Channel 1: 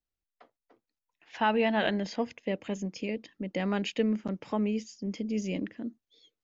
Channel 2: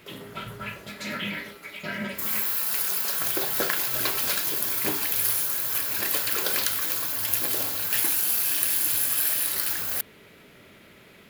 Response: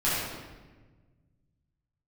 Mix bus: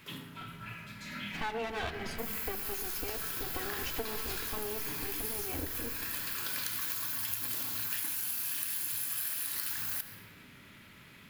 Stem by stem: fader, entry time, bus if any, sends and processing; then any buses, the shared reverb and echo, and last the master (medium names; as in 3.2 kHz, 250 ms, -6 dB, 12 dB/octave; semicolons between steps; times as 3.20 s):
-1.0 dB, 0.00 s, send -23 dB, comb filter that takes the minimum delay 2.6 ms; peaking EQ 73 Hz +12 dB 0.44 oct
-3.5 dB, 0.00 s, send -19 dB, high-order bell 520 Hz -9 dB 1.3 oct; auto duck -12 dB, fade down 0.25 s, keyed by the first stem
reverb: on, RT60 1.3 s, pre-delay 7 ms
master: compression 6:1, threshold -32 dBFS, peak gain reduction 10.5 dB